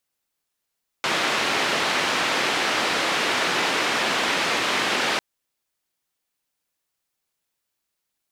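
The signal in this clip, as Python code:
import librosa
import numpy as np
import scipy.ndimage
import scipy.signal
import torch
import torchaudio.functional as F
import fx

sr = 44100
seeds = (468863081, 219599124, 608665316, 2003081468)

y = fx.band_noise(sr, seeds[0], length_s=4.15, low_hz=230.0, high_hz=2900.0, level_db=-23.0)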